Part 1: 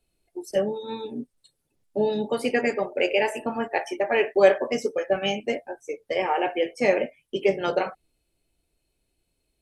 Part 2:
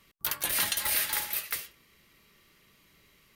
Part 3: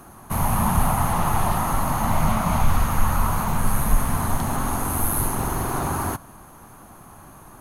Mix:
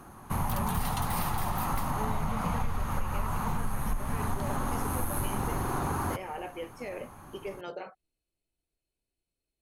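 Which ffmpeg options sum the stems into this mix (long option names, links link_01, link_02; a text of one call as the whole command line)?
ffmpeg -i stem1.wav -i stem2.wav -i stem3.wav -filter_complex "[0:a]alimiter=limit=-15.5dB:level=0:latency=1:release=33,volume=-13.5dB[link_01];[1:a]adelay=250,volume=-5.5dB[link_02];[2:a]highshelf=frequency=6000:gain=-7,bandreject=frequency=650:width=12,volume=-3.5dB[link_03];[link_01][link_02][link_03]amix=inputs=3:normalize=0,acompressor=threshold=-26dB:ratio=6" out.wav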